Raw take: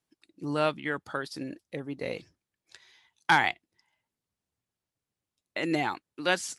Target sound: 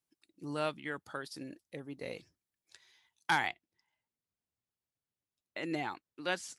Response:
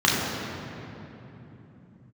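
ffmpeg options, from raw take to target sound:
-af "asetnsamples=n=441:p=0,asendcmd='3.47 highshelf g -2.5',highshelf=f=6.7k:g=8,volume=-8dB"

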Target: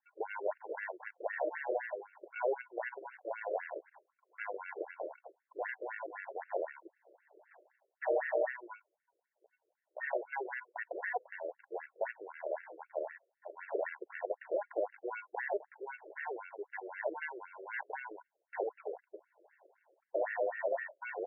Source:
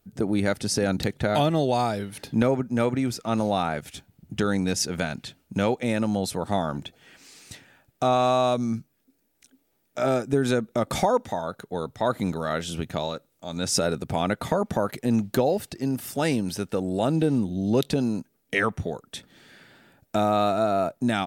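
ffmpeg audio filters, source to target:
-af "adynamicequalizer=threshold=0.0112:dfrequency=130:dqfactor=0.89:tfrequency=130:tqfactor=0.89:attack=5:release=100:ratio=0.375:range=2.5:mode=cutabove:tftype=bell,acrusher=samples=36:mix=1:aa=0.000001,afftfilt=real='re*between(b*sr/1024,440*pow(2000/440,0.5+0.5*sin(2*PI*3.9*pts/sr))/1.41,440*pow(2000/440,0.5+0.5*sin(2*PI*3.9*pts/sr))*1.41)':imag='im*between(b*sr/1024,440*pow(2000/440,0.5+0.5*sin(2*PI*3.9*pts/sr))/1.41,440*pow(2000/440,0.5+0.5*sin(2*PI*3.9*pts/sr))*1.41)':win_size=1024:overlap=0.75,volume=-6dB"

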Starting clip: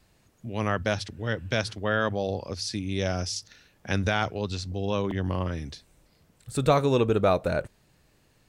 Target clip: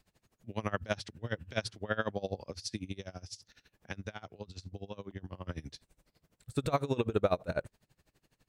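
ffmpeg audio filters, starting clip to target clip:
-filter_complex "[0:a]asettb=1/sr,asplit=3[a][b][c];[a]atrim=end=2.914[d];[b]atrim=start=2.91:end=5.47,asetpts=PTS-STARTPTS,afade=t=in:d=0.004:c=qsin,afade=t=out:st=2.556:d=0.004:c=qsin,acompressor=threshold=-33dB:ratio=5[e];[c]atrim=start=5.466[f];[d][e]acrossfade=d=0.004:c1=hsin:c2=qsin[g];[g][f]acrossfade=d=0.004:c1=qsin:c2=hsin,aeval=exprs='val(0)*pow(10,-23*(0.5-0.5*cos(2*PI*12*n/s))/20)':c=same,volume=-2.5dB"

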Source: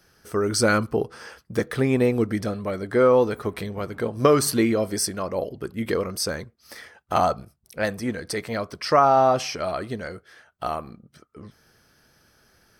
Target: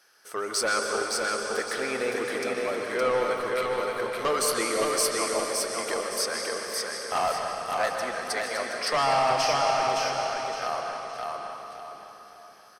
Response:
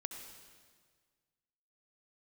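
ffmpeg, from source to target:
-filter_complex "[0:a]highpass=650,asoftclip=type=tanh:threshold=-21dB,aecho=1:1:565|1130|1695|2260:0.708|0.227|0.0725|0.0232[a];[1:a]atrim=start_sample=2205,asetrate=22932,aresample=44100[b];[a][b]afir=irnorm=-1:irlink=0"

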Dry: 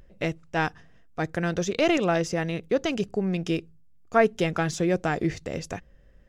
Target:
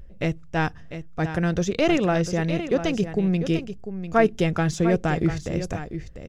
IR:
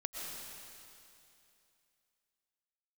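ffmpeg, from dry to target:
-af "lowshelf=f=170:g=11,aecho=1:1:697:0.299"

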